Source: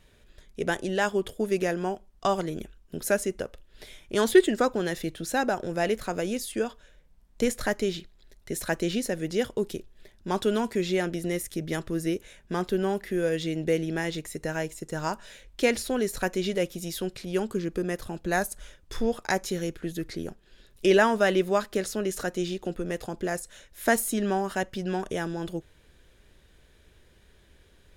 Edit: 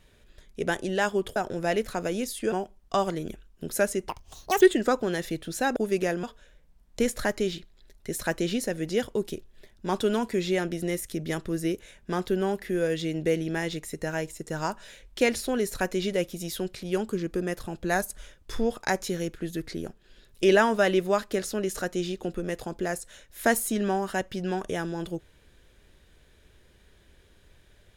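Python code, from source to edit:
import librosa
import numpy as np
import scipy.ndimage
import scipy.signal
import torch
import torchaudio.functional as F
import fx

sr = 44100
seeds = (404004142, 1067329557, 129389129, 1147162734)

y = fx.edit(x, sr, fx.swap(start_s=1.36, length_s=0.47, other_s=5.49, other_length_s=1.16),
    fx.speed_span(start_s=3.4, length_s=0.94, speed=1.8), tone=tone)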